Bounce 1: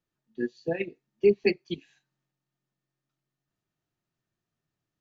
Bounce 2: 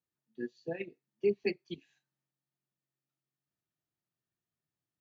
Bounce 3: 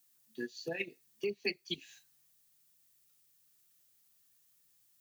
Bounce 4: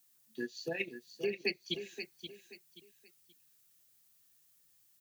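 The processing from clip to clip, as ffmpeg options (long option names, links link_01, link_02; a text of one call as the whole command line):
ffmpeg -i in.wav -af "highpass=55,volume=-8.5dB" out.wav
ffmpeg -i in.wav -af "acompressor=threshold=-43dB:ratio=2.5,crystalizer=i=9.5:c=0,volume=3dB" out.wav
ffmpeg -i in.wav -af "aecho=1:1:528|1056|1584:0.335|0.0971|0.0282,volume=1dB" out.wav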